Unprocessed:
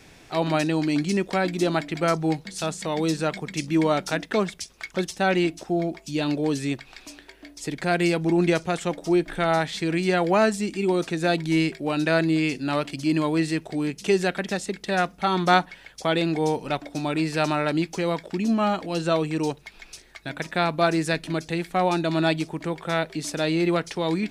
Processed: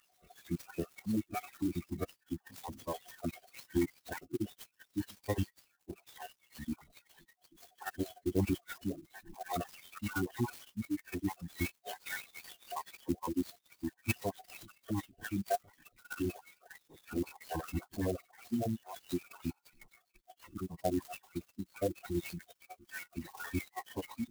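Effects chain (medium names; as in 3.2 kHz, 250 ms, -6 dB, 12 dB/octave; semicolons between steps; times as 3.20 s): random holes in the spectrogram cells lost 75%; formant-preserving pitch shift -10.5 st; sampling jitter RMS 0.044 ms; trim -8 dB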